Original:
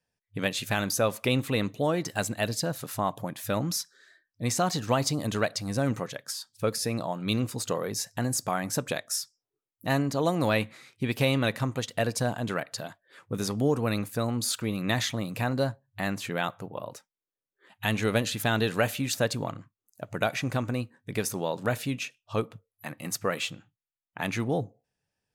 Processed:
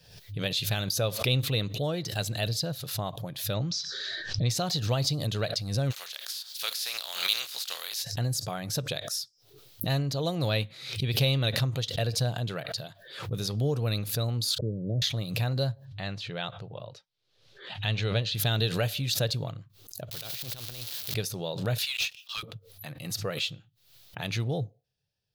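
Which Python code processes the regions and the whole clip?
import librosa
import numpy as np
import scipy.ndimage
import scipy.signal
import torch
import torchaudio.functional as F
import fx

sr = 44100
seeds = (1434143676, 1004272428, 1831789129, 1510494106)

y = fx.chain(x, sr, fx.steep_lowpass(hz=6700.0, slope=36),
    fx.pre_swell(db_per_s=21.0), at=(3.54, 4.5))
y = fx.spec_flatten(y, sr, power=0.49, at=(5.9, 8.02), fade=0.02)
y = fx.highpass(y, sr, hz=1100.0, slope=12, at=(5.9, 8.02), fade=0.02)
y = fx.chain(y, sr, fx.ellip_lowpass(hz=580.0, order=4, stop_db=50),
    fx.dynamic_eq(hz=420.0, q=2.9, threshold_db=-45.0, ratio=4.0, max_db=5),
    fx.band_squash(depth_pct=40), at=(14.58, 15.02))
y = fx.chain(y, sr, fx.lowpass(hz=4800.0, slope=12),
    fx.peak_eq(hz=260.0, db=-4.0, octaves=1.2), at=(15.85, 18.35))
y = fx.chain(y, sr, fx.crossing_spikes(level_db=-21.5),
    fx.over_compress(threshold_db=-31.0, ratio=-0.5),
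    fx.spectral_comp(ratio=2.0), at=(20.11, 21.14))
y = fx.chain(y, sr, fx.highpass(hz=1400.0, slope=24),
    fx.leveller(passes=3), at=(21.78, 22.43))
y = fx.graphic_eq_10(y, sr, hz=(125, 250, 1000, 2000, 4000, 8000), db=(6, -11, -9, -7, 9, -9))
y = fx.pre_swell(y, sr, db_per_s=80.0)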